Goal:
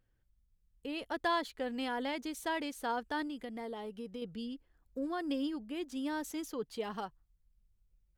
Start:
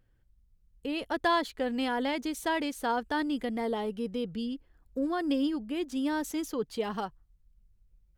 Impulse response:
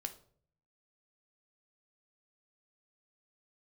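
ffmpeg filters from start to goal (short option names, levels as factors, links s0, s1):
-filter_complex "[0:a]lowshelf=f=360:g=-3,asettb=1/sr,asplit=3[s0][s1][s2];[s0]atrim=end=3.274[s3];[s1]atrim=start=3.27:end=4.22,asetpts=PTS-STARTPTS,afade=t=in:d=0.004:c=qsin,afade=t=out:st=0.946:d=0.004:c=qsin,acompressor=threshold=0.0178:ratio=3[s4];[s2]atrim=start=4.216[s5];[s3][s4]acrossfade=d=0.004:c1=hsin:c2=qsin[s6];[s6][s5]acrossfade=d=0.004:c1=qsin:c2=hsin,volume=0.562"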